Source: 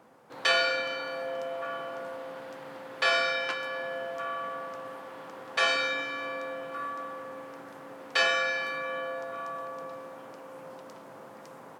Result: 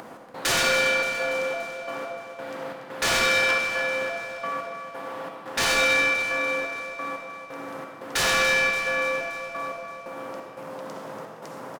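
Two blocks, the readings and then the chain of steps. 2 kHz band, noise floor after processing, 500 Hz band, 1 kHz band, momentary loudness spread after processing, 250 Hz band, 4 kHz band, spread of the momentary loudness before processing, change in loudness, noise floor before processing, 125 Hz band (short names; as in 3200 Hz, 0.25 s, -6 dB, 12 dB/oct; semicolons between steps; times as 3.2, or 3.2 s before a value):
+6.5 dB, -42 dBFS, +5.0 dB, +4.0 dB, 18 LU, +8.5 dB, +4.5 dB, 21 LU, +6.5 dB, -48 dBFS, +12.5 dB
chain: upward compressor, threshold -40 dBFS; wavefolder -24 dBFS; step gate "x.xxxx.xx..x..x" 88 bpm; on a send: feedback echo 0.287 s, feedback 58%, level -11 dB; on the sum: digital reverb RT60 1.5 s, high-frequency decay 0.8×, pre-delay 25 ms, DRR 2.5 dB; gain +6 dB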